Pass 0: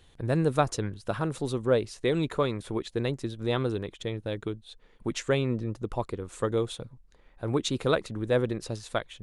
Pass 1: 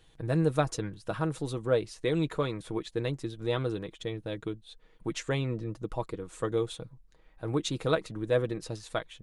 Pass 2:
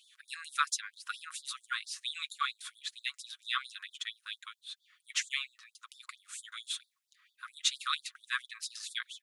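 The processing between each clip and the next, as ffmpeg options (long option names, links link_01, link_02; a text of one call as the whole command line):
ffmpeg -i in.wav -af "aecho=1:1:6.3:0.46,volume=-3.5dB" out.wav
ffmpeg -i in.wav -af "afftfilt=real='re*gte(b*sr/1024,990*pow(3400/990,0.5+0.5*sin(2*PI*4.4*pts/sr)))':imag='im*gte(b*sr/1024,990*pow(3400/990,0.5+0.5*sin(2*PI*4.4*pts/sr)))':win_size=1024:overlap=0.75,volume=6dB" out.wav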